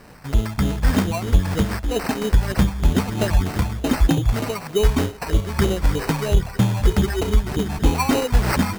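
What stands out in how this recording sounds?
a quantiser's noise floor 8-bit, dither none; phasing stages 8, 3.2 Hz, lowest notch 380–2200 Hz; aliases and images of a low sample rate 3400 Hz, jitter 0%; noise-modulated level

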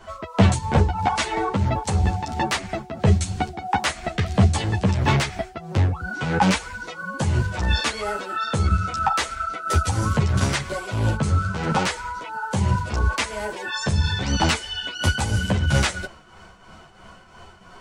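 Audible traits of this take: tremolo triangle 3 Hz, depth 65%; a shimmering, thickened sound

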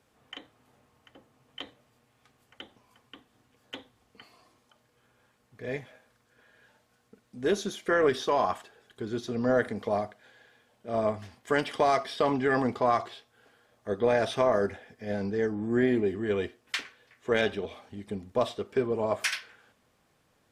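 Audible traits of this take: noise floor -70 dBFS; spectral tilt -4.0 dB/oct

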